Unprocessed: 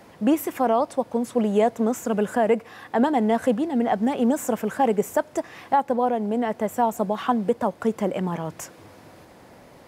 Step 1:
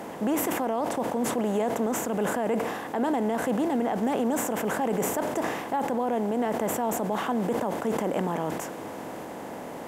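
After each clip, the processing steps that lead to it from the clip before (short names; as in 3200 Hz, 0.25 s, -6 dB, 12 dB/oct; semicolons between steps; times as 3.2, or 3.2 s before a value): per-bin compression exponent 0.6; limiter -12.5 dBFS, peak gain reduction 7.5 dB; sustainer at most 40 dB/s; gain -5.5 dB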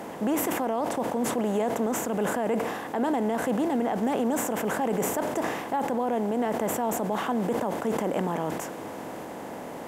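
nothing audible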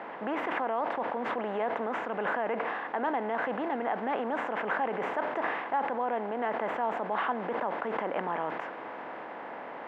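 band-pass 1700 Hz, Q 0.9; air absorption 370 m; gain +5.5 dB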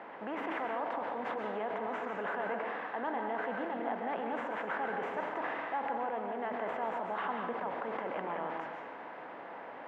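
plate-style reverb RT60 0.69 s, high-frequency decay 0.95×, pre-delay 0.115 s, DRR 3 dB; gain -6.5 dB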